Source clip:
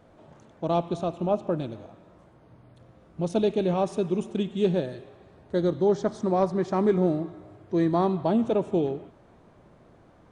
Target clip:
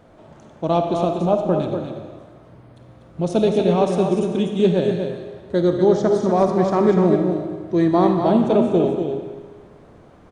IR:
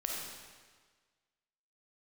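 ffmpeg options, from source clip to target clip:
-filter_complex "[0:a]aecho=1:1:244:0.473,asplit=2[s0][s1];[1:a]atrim=start_sample=2205[s2];[s1][s2]afir=irnorm=-1:irlink=0,volume=0.708[s3];[s0][s3]amix=inputs=2:normalize=0,volume=1.19"

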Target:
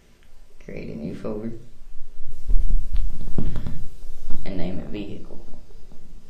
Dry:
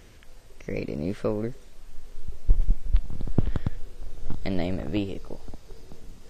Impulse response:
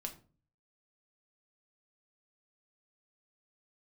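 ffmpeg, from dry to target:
-filter_complex "[0:a]asettb=1/sr,asplit=3[s0][s1][s2];[s0]atrim=end=2.314[s3];[s1]atrim=start=2.31:end=4.44,asetpts=PTS-STARTPTS,afade=t=in:d=0.004:c=qsin,afade=t=out:st=2.126:d=0.004:c=qsin,highshelf=f=3500:g=9[s4];[s2]atrim=start=4.436[s5];[s3][s4]acrossfade=d=0.004:c1=hsin:c2=qsin[s6];[s6][s5]acrossfade=d=0.004:c1=qsin:c2=hsin[s7];[1:a]atrim=start_sample=2205[s8];[s7][s8]afir=irnorm=-1:irlink=0,volume=0.891"

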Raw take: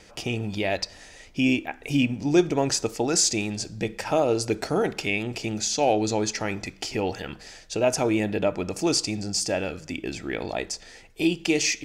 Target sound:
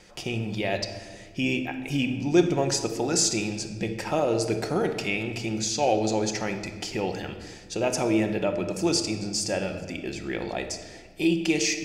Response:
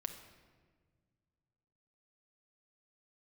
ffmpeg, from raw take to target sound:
-filter_complex "[1:a]atrim=start_sample=2205[s0];[0:a][s0]afir=irnorm=-1:irlink=0"

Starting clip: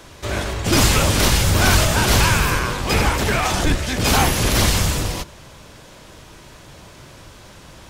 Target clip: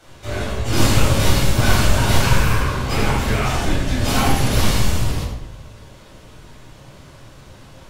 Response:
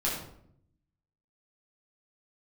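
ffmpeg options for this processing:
-filter_complex "[1:a]atrim=start_sample=2205,asetrate=37044,aresample=44100[s0];[0:a][s0]afir=irnorm=-1:irlink=0,volume=0.266"

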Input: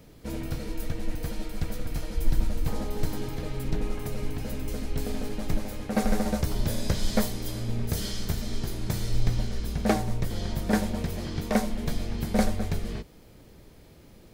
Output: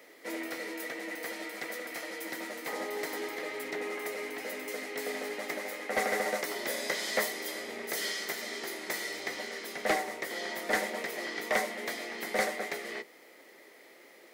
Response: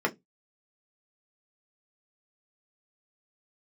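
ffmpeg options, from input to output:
-filter_complex "[0:a]highpass=f=350:w=0.5412,highpass=f=350:w=1.3066,equalizer=f=2000:t=o:w=0.28:g=15,asoftclip=type=tanh:threshold=0.0794,asplit=2[s0][s1];[1:a]atrim=start_sample=2205[s2];[s1][s2]afir=irnorm=-1:irlink=0,volume=0.075[s3];[s0][s3]amix=inputs=2:normalize=0"

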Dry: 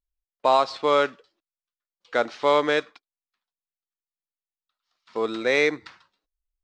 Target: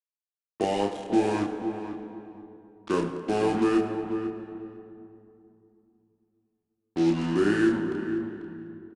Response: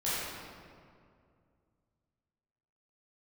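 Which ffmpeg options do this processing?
-filter_complex "[0:a]lowshelf=f=550:t=q:w=1.5:g=6.5,acrossover=split=230[s0][s1];[s1]acompressor=threshold=0.0794:ratio=2[s2];[s0][s2]amix=inputs=2:normalize=0,acrusher=bits=4:mix=0:aa=0.5,asplit=2[s3][s4];[s4]adelay=22,volume=0.668[s5];[s3][s5]amix=inputs=2:normalize=0,asplit=2[s6][s7];[s7]adelay=365,lowpass=f=2100:p=1,volume=0.355,asplit=2[s8][s9];[s9]adelay=365,lowpass=f=2100:p=1,volume=0.17,asplit=2[s10][s11];[s11]adelay=365,lowpass=f=2100:p=1,volume=0.17[s12];[s6][s8][s10][s12]amix=inputs=4:normalize=0,asplit=2[s13][s14];[1:a]atrim=start_sample=2205[s15];[s14][s15]afir=irnorm=-1:irlink=0,volume=0.224[s16];[s13][s16]amix=inputs=2:normalize=0,asetrate=32667,aresample=44100,aresample=22050,aresample=44100,adynamicequalizer=threshold=0.0158:dfrequency=1900:dqfactor=0.7:tfrequency=1900:tqfactor=0.7:attack=5:release=100:ratio=0.375:range=3:mode=cutabove:tftype=highshelf,volume=0.501"

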